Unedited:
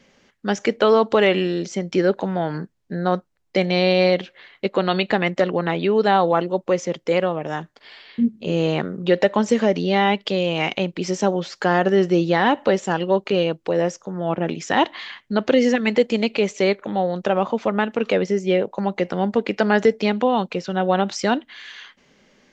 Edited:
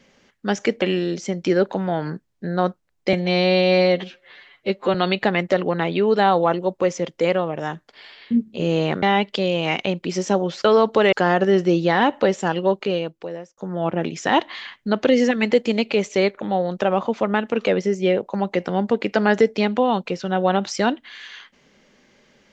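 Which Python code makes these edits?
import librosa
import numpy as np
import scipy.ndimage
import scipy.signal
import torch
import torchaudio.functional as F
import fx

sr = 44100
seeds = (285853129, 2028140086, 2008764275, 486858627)

y = fx.edit(x, sr, fx.move(start_s=0.82, length_s=0.48, to_s=11.57),
    fx.stretch_span(start_s=3.61, length_s=1.21, factor=1.5),
    fx.cut(start_s=8.9, length_s=1.05),
    fx.fade_out_span(start_s=13.1, length_s=0.92), tone=tone)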